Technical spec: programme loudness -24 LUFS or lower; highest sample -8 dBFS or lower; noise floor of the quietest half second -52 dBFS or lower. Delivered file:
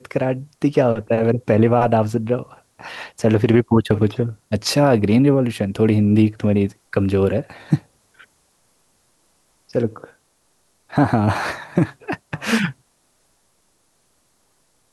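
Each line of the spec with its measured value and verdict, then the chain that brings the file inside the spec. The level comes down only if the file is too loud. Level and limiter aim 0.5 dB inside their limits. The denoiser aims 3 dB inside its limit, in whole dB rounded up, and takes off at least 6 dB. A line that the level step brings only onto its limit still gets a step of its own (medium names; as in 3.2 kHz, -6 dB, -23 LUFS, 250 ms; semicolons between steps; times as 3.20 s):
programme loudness -19.0 LUFS: fail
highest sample -3.5 dBFS: fail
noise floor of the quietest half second -63 dBFS: pass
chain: trim -5.5 dB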